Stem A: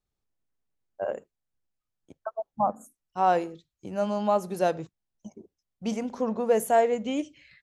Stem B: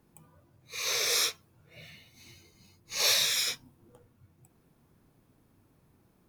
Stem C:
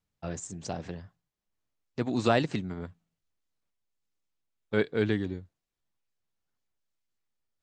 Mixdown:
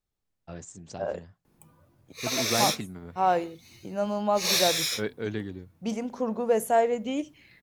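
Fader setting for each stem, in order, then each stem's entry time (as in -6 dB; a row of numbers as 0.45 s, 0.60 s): -1.0 dB, +0.5 dB, -5.0 dB; 0.00 s, 1.45 s, 0.25 s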